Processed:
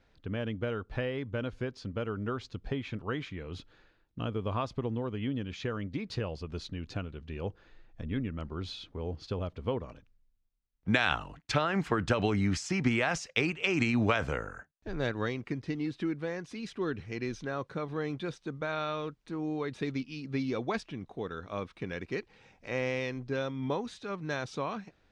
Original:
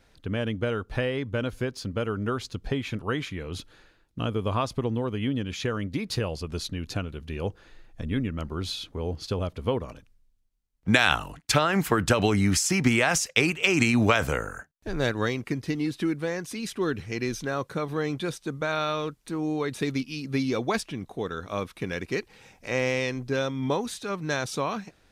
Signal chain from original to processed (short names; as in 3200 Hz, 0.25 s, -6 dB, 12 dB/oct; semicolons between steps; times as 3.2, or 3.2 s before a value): air absorption 120 m; gain -5.5 dB